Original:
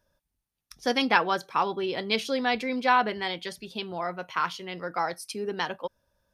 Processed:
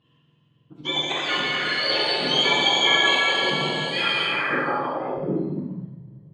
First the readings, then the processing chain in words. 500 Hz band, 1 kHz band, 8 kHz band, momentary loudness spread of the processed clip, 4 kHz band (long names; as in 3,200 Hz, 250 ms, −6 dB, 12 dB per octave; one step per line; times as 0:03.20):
+3.0 dB, 0.0 dB, +7.5 dB, 12 LU, +13.5 dB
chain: frequency axis turned over on the octave scale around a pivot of 1,300 Hz
downward compressor, threshold −30 dBFS, peak gain reduction 11 dB
on a send: delay with a high-pass on its return 162 ms, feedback 74%, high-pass 2,900 Hz, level −10 dB
on the sum: volume swells 115 ms
dense smooth reverb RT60 4 s, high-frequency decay 0.85×, DRR −7.5 dB
low-pass filter sweep 3,300 Hz → 120 Hz, 0:04.24–0:06.02
level +4.5 dB